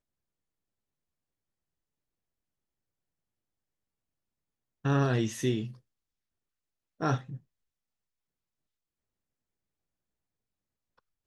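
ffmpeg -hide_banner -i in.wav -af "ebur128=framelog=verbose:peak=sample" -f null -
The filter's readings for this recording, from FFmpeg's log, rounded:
Integrated loudness:
  I:         -30.3 LUFS
  Threshold: -41.2 LUFS
Loudness range:
  LRA:         7.3 LU
  Threshold: -55.6 LUFS
  LRA low:   -40.3 LUFS
  LRA high:  -33.0 LUFS
Sample peak:
  Peak:      -15.3 dBFS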